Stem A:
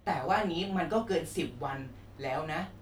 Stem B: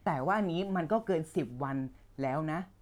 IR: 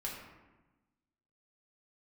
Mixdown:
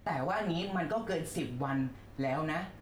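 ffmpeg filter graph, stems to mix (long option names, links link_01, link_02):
-filter_complex "[0:a]volume=-1.5dB,asplit=2[link_01][link_02];[link_02]volume=-16dB[link_03];[1:a]aecho=1:1:7.4:0.73,volume=-2dB[link_04];[2:a]atrim=start_sample=2205[link_05];[link_03][link_05]afir=irnorm=-1:irlink=0[link_06];[link_01][link_04][link_06]amix=inputs=3:normalize=0,equalizer=frequency=1800:width_type=o:width=0.35:gain=2.5,alimiter=limit=-24dB:level=0:latency=1:release=107"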